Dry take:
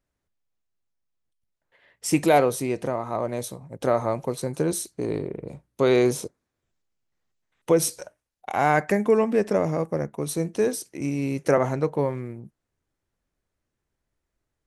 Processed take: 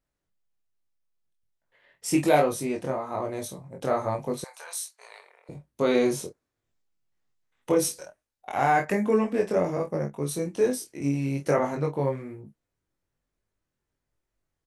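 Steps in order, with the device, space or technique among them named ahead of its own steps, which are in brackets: double-tracked vocal (doubler 28 ms -8 dB; chorus 1.2 Hz, delay 19 ms, depth 3.6 ms); 4.44–5.49 inverse Chebyshev high-pass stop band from 320 Hz, stop band 50 dB

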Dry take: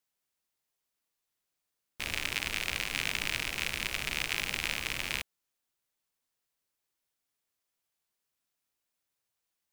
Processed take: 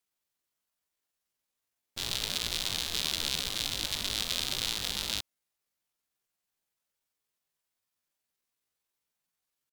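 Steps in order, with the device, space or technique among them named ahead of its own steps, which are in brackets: chipmunk voice (pitch shift +7.5 st); gain +1.5 dB

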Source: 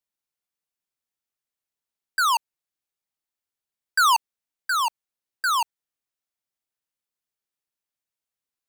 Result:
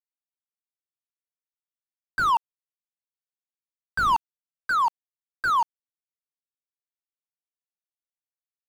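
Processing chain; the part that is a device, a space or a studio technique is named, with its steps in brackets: early transistor amplifier (crossover distortion -51.5 dBFS; slew limiter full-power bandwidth 72 Hz); gain +4.5 dB

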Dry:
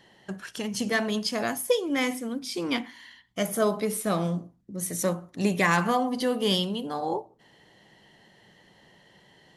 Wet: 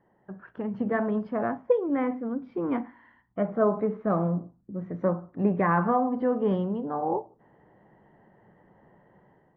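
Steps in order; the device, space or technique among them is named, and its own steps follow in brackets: action camera in a waterproof case (LPF 1400 Hz 24 dB/oct; AGC gain up to 8 dB; gain -6.5 dB; AAC 64 kbps 16000 Hz)

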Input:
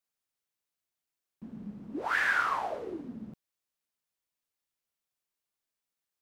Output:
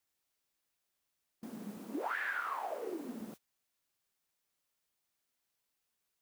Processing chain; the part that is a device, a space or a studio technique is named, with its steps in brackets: baby monitor (BPF 370–3400 Hz; compressor, threshold -43 dBFS, peak gain reduction 18 dB; white noise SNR 16 dB; gate -56 dBFS, range -23 dB); 1.77–3.21 HPF 160 Hz 24 dB/oct; gain +7 dB

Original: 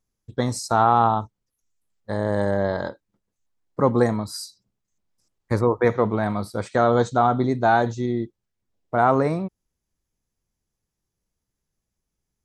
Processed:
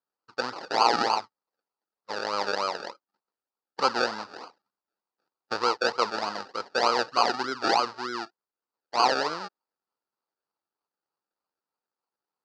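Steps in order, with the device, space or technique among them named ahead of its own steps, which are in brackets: circuit-bent sampling toy (decimation with a swept rate 34×, swing 60% 3.3 Hz; speaker cabinet 530–5200 Hz, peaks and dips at 630 Hz -5 dB, 900 Hz +4 dB, 1300 Hz +7 dB, 2200 Hz -8 dB, 3300 Hz -8 dB, 4700 Hz +10 dB); gain -3 dB

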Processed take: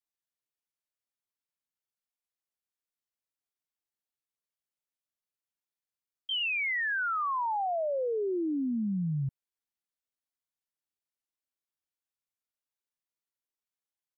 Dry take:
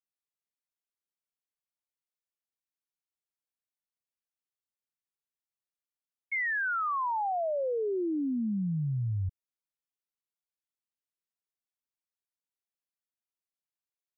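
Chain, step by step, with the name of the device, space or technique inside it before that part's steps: chipmunk voice (pitch shift +6.5 st)

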